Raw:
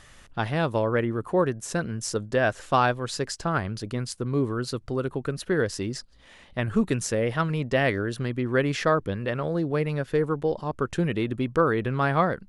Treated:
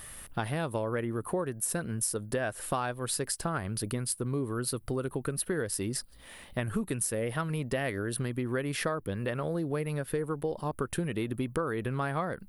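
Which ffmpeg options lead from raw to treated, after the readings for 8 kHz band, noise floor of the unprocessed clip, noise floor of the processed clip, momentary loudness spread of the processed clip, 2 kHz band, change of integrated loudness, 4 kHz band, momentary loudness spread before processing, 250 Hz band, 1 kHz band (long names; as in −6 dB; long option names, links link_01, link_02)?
+3.5 dB, −51 dBFS, −52 dBFS, 3 LU, −8.0 dB, −6.0 dB, −5.0 dB, 7 LU, −6.5 dB, −8.5 dB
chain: -af "aexciter=amount=10.9:drive=5.5:freq=9300,acompressor=threshold=-30dB:ratio=6,volume=1.5dB"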